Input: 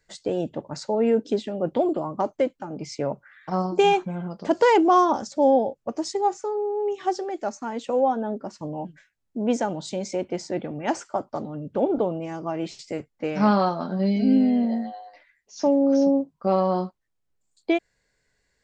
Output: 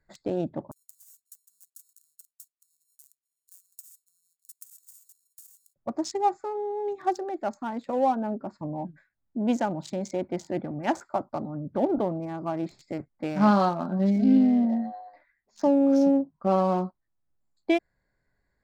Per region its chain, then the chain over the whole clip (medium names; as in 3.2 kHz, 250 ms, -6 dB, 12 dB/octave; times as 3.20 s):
0.71–5.76 s: sorted samples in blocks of 32 samples + inverse Chebyshev high-pass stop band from 1.9 kHz, stop band 70 dB + compression 3:1, threshold -39 dBFS
whole clip: local Wiener filter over 15 samples; peaking EQ 460 Hz -9.5 dB 0.31 oct